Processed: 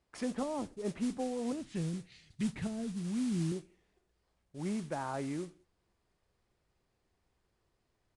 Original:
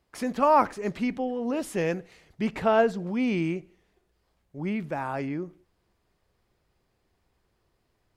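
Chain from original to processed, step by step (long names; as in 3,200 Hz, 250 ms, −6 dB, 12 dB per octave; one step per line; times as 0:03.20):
treble cut that deepens with the level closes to 340 Hz, closed at −22 dBFS
0:01.52–0:03.52: octave-band graphic EQ 125/500/1,000/4,000/8,000 Hz +9/−11/−10/+9/+5 dB
noise that follows the level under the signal 15 dB
downsampling to 22,050 Hz
level −6 dB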